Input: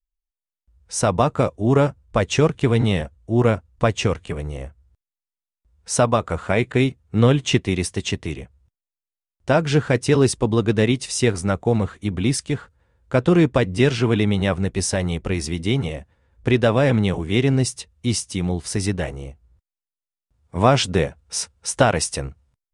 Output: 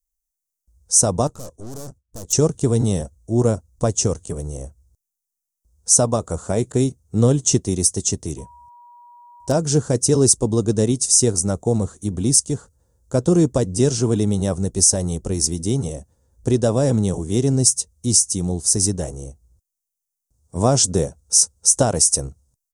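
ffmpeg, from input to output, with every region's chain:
ffmpeg -i in.wav -filter_complex "[0:a]asettb=1/sr,asplit=3[link_01][link_02][link_03];[link_01]atrim=end=1.274[link_04];[link_02]atrim=start=1.27:end=2.33,asetpts=PTS-STARTPTS,afade=type=in:duration=0.004:curve=qsin,afade=type=out:start_time=1.056:duration=0.004:curve=qsin,agate=range=-33dB:threshold=-45dB:ratio=3:release=100:detection=peak,aeval=exprs='(tanh(44.7*val(0)+0.8)-tanh(0.8))/44.7':channel_layout=same[link_05];[link_03]atrim=start=2.326[link_06];[link_04][link_05]acrossfade=duration=0.004:curve1=hsin:curve2=qsin[link_07];[link_07][link_06]acrossfade=duration=0.004:curve1=qsin:curve2=hsin,asettb=1/sr,asplit=3[link_08][link_09][link_10];[link_08]atrim=end=8.384[link_11];[link_09]atrim=start=8.38:end=9.52,asetpts=PTS-STARTPTS,afade=type=in:duration=0.004:curve=qsin,afade=type=out:start_time=1.136:duration=0.004:curve=qsin,bandreject=frequency=6600:width=12,aeval=exprs='0.335*(abs(mod(val(0)/0.335+3,4)-2)-1)':channel_layout=same,aeval=exprs='val(0)+0.0126*sin(2*PI*960*n/s)':channel_layout=same[link_12];[link_10]atrim=start=9.516[link_13];[link_11][link_12]acrossfade=duration=0.004:curve1=hsin:curve2=qsin[link_14];[link_14][link_13]acrossfade=duration=0.004:curve1=qsin:curve2=hsin,firequalizer=gain_entry='entry(450,0);entry(2200,-19);entry(6100,14)':delay=0.05:min_phase=1,alimiter=level_in=1dB:limit=-1dB:release=50:level=0:latency=1,volume=-1dB" out.wav

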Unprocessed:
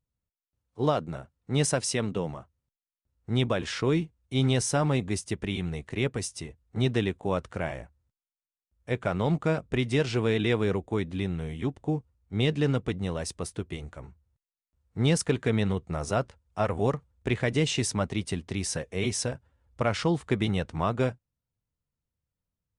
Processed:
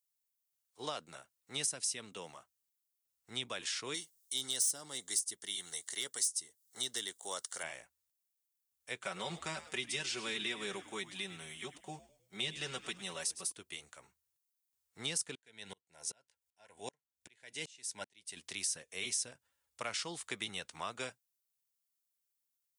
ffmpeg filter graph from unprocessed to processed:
ffmpeg -i in.wav -filter_complex "[0:a]asettb=1/sr,asplit=3[link_01][link_02][link_03];[link_01]atrim=end=3.944[link_04];[link_02]atrim=start=3.94:end=7.63,asetpts=PTS-STARTPTS,afade=type=in:duration=0.004:curve=qsin,afade=type=out:start_time=3.686:duration=0.004:curve=qsin,bass=frequency=250:gain=-10,treble=frequency=4000:gain=13,volume=16.5dB,asoftclip=hard,volume=-16.5dB,asuperstop=centerf=2500:order=4:qfactor=3.9[link_05];[link_03]atrim=start=7.626[link_06];[link_04][link_05]acrossfade=duration=0.004:curve1=hsin:curve2=qsin[link_07];[link_07][link_06]acrossfade=duration=0.004:curve1=qsin:curve2=hsin,asettb=1/sr,asplit=3[link_08][link_09][link_10];[link_08]atrim=end=9.034[link_11];[link_09]atrim=start=9.03:end=13.52,asetpts=PTS-STARTPTS,afade=type=in:duration=0.004:curve=qsin,afade=type=out:start_time=4.486:duration=0.004:curve=qsin,aecho=1:1:5.3:0.81,atrim=end_sample=198009,asplit=5[link_12][link_13][link_14][link_15][link_16];[link_13]adelay=104,afreqshift=-91,volume=-14.5dB[link_17];[link_14]adelay=208,afreqshift=-182,volume=-20.9dB[link_18];[link_15]adelay=312,afreqshift=-273,volume=-27.3dB[link_19];[link_16]adelay=416,afreqshift=-364,volume=-33.6dB[link_20];[link_12][link_17][link_18][link_19][link_20]amix=inputs=5:normalize=0,atrim=end_sample=198009[link_21];[link_10]atrim=start=13.516[link_22];[link_11][link_21]acrossfade=duration=0.004:curve1=hsin:curve2=qsin[link_23];[link_23][link_22]acrossfade=duration=0.004:curve1=qsin:curve2=hsin,asettb=1/sr,asplit=3[link_24][link_25][link_26];[link_24]atrim=end=15.354[link_27];[link_25]atrim=start=15.35:end=18.37,asetpts=PTS-STARTPTS,afade=type=in:duration=0.004:curve=qsin,afade=type=out:start_time=3.016:duration=0.004:curve=qsin,asuperstop=centerf=1200:order=12:qfactor=4.2,aeval=exprs='val(0)*pow(10,-36*if(lt(mod(-2.6*n/s,1),2*abs(-2.6)/1000),1-mod(-2.6*n/s,1)/(2*abs(-2.6)/1000),(mod(-2.6*n/s,1)-2*abs(-2.6)/1000)/(1-2*abs(-2.6)/1000))/20)':channel_layout=same[link_28];[link_26]atrim=start=18.366[link_29];[link_27][link_28]acrossfade=duration=0.004:curve1=hsin:curve2=qsin[link_30];[link_30][link_29]acrossfade=duration=0.004:curve1=qsin:curve2=hsin,aderivative,acrossover=split=360[link_31][link_32];[link_32]acompressor=threshold=-44dB:ratio=3[link_33];[link_31][link_33]amix=inputs=2:normalize=0,volume=7.5dB" out.wav

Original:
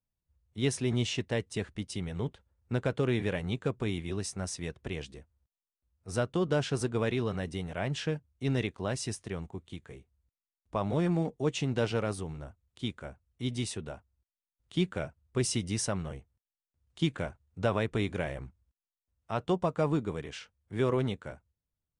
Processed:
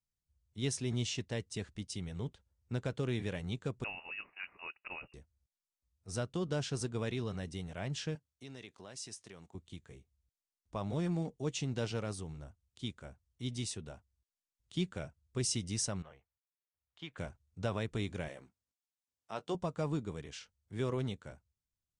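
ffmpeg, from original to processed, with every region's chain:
ffmpeg -i in.wav -filter_complex "[0:a]asettb=1/sr,asplit=3[link_01][link_02][link_03];[link_01]atrim=end=3.844[link_04];[link_02]atrim=start=3.84:end=5.14,asetpts=PTS-STARTPTS,afade=type=in:duration=0.004:curve=qsin,afade=type=out:start_time=1.296:duration=0.004:curve=qsin,highpass=470,acontrast=30,lowpass=frequency=2600:width_type=q:width=0.5098,lowpass=frequency=2600:width_type=q:width=0.6013,lowpass=frequency=2600:width_type=q:width=0.9,lowpass=frequency=2600:width_type=q:width=2.563,afreqshift=-3000[link_05];[link_03]atrim=start=5.136[link_06];[link_04][link_05]acrossfade=duration=0.004:curve1=hsin:curve2=qsin[link_07];[link_07][link_06]acrossfade=duration=0.004:curve1=qsin:curve2=hsin,asettb=1/sr,asplit=3[link_08][link_09][link_10];[link_08]atrim=end=8.154[link_11];[link_09]atrim=start=8.15:end=9.55,asetpts=PTS-STARTPTS,afade=type=in:duration=0.004:curve=qsin,afade=type=out:start_time=1.396:duration=0.004:curve=qsin,highpass=frequency=390:poles=1,acompressor=threshold=-41dB:ratio=2.5:attack=3.2:release=140:knee=1:detection=peak[link_12];[link_10]atrim=start=9.546[link_13];[link_11][link_12]acrossfade=duration=0.004:curve1=hsin:curve2=qsin[link_14];[link_14][link_13]acrossfade=duration=0.004:curve1=qsin:curve2=hsin,asettb=1/sr,asplit=3[link_15][link_16][link_17];[link_15]atrim=end=16.024[link_18];[link_16]atrim=start=16.02:end=17.17,asetpts=PTS-STARTPTS,afade=type=in:duration=0.004:curve=qsin,afade=type=out:start_time=1.146:duration=0.004:curve=qsin,lowpass=6900,acrossover=split=550 3000:gain=0.141 1 0.126[link_19][link_20][link_21];[link_19][link_20][link_21]amix=inputs=3:normalize=0[link_22];[link_17]atrim=start=17.166[link_23];[link_18][link_22]acrossfade=duration=0.004:curve1=hsin:curve2=qsin[link_24];[link_24][link_23]acrossfade=duration=0.004:curve1=qsin:curve2=hsin,asettb=1/sr,asplit=3[link_25][link_26][link_27];[link_25]atrim=end=18.284[link_28];[link_26]atrim=start=18.28:end=19.55,asetpts=PTS-STARTPTS,afade=type=in:duration=0.004:curve=qsin,afade=type=out:start_time=1.266:duration=0.004:curve=qsin,highpass=250,asplit=2[link_29][link_30];[link_30]adelay=19,volume=-13dB[link_31];[link_29][link_31]amix=inputs=2:normalize=0,atrim=end_sample=56007[link_32];[link_27]atrim=start=19.546[link_33];[link_28][link_32]acrossfade=duration=0.004:curve1=hsin:curve2=qsin[link_34];[link_34][link_33]acrossfade=duration=0.004:curve1=qsin:curve2=hsin,lowpass=7200,bass=frequency=250:gain=4,treble=frequency=4000:gain=12,volume=-8.5dB" out.wav

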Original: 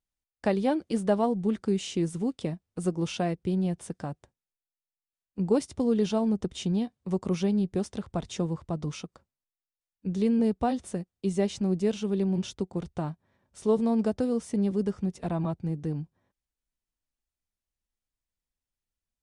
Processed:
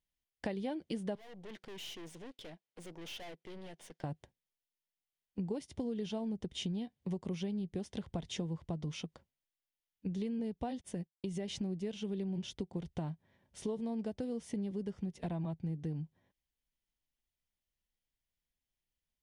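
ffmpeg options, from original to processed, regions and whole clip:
ffmpeg -i in.wav -filter_complex "[0:a]asettb=1/sr,asplit=3[link_01][link_02][link_03];[link_01]atrim=end=1.154[link_04];[link_02]atrim=start=1.15:end=4.04,asetpts=PTS-STARTPTS,afade=type=in:duration=0.004:curve=qsin,afade=type=out:start_time=2.886:duration=0.004:curve=qsin,highpass=440,lowpass=7700,aeval=exprs='(tanh(178*val(0)+0.7)-tanh(0.7))/178':channel_layout=same[link_05];[link_03]atrim=start=4.036[link_06];[link_04][link_05]acrossfade=duration=0.004:curve1=hsin:curve2=qsin[link_07];[link_07][link_06]acrossfade=duration=0.004:curve1=qsin:curve2=hsin,asettb=1/sr,asplit=3[link_08][link_09][link_10];[link_08]atrim=end=10.814[link_11];[link_09]atrim=start=10.81:end=11.48,asetpts=PTS-STARTPTS,afade=type=in:duration=0.004:curve=qsin,afade=type=out:start_time=0.666:duration=0.004:curve=qsin,agate=range=-33dB:threshold=-43dB:ratio=3:release=100:detection=peak,bandreject=frequency=4100:width=15,acompressor=threshold=-32dB:ratio=2:attack=3.2:release=140:knee=1:detection=peak[link_12];[link_10]atrim=start=11.476[link_13];[link_11][link_12]acrossfade=duration=0.004:curve1=hsin:curve2=qsin[link_14];[link_14][link_13]acrossfade=duration=0.004:curve1=qsin:curve2=hsin,equalizer=frequency=160:width_type=o:width=0.33:gain=4,equalizer=frequency=1250:width_type=o:width=0.33:gain=-8,equalizer=frequency=2000:width_type=o:width=0.33:gain=4,equalizer=frequency=3150:width_type=o:width=0.33:gain=6,equalizer=frequency=8000:width_type=o:width=0.33:gain=-5,acompressor=threshold=-34dB:ratio=6,volume=-1.5dB" out.wav

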